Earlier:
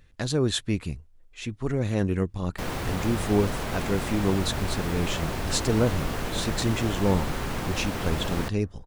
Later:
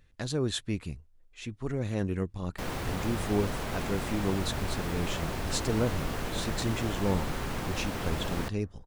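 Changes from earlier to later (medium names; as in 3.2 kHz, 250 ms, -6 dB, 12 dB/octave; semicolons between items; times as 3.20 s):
speech -5.5 dB; background -3.5 dB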